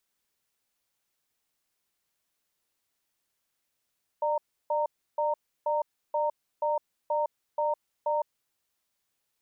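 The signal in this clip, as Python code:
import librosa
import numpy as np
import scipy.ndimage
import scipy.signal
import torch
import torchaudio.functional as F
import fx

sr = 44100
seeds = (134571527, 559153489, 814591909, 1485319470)

y = fx.cadence(sr, length_s=4.27, low_hz=597.0, high_hz=924.0, on_s=0.16, off_s=0.32, level_db=-27.0)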